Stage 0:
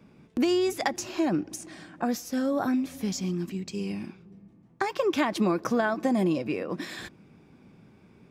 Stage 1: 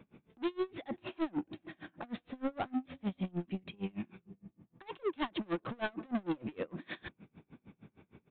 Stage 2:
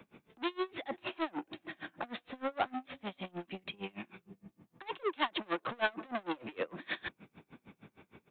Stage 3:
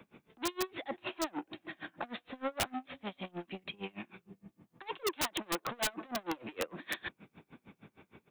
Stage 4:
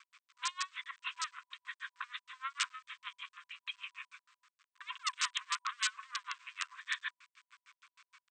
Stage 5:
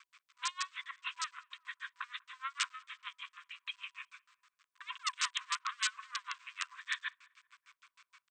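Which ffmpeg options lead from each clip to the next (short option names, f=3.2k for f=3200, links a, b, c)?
-af "aresample=8000,asoftclip=type=tanh:threshold=-29.5dB,aresample=44100,aeval=exprs='val(0)*pow(10,-31*(0.5-0.5*cos(2*PI*6.5*n/s))/20)':c=same,volume=2dB"
-filter_complex "[0:a]lowshelf=f=370:g=-10.5,acrossover=split=370|510[a][b][c];[a]acompressor=threshold=-52dB:ratio=6[d];[d][b][c]amix=inputs=3:normalize=0,volume=7dB"
-af "aeval=exprs='(mod(16.8*val(0)+1,2)-1)/16.8':c=same"
-af "aeval=exprs='val(0)*gte(abs(val(0)),0.0015)':c=same,afftfilt=real='re*between(b*sr/4096,990,8600)':imag='im*between(b*sr/4096,990,8600)':win_size=4096:overlap=0.75,volume=2dB"
-filter_complex "[0:a]asplit=2[a][b];[b]adelay=194,lowpass=f=1.6k:p=1,volume=-24dB,asplit=2[c][d];[d]adelay=194,lowpass=f=1.6k:p=1,volume=0.4,asplit=2[e][f];[f]adelay=194,lowpass=f=1.6k:p=1,volume=0.4[g];[a][c][e][g]amix=inputs=4:normalize=0"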